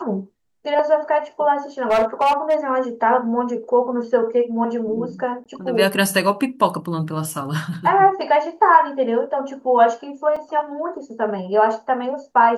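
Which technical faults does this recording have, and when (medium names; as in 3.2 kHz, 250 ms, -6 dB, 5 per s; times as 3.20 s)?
1.90–2.55 s: clipped -12.5 dBFS
5.44–5.46 s: dropout 17 ms
10.36 s: dropout 4.4 ms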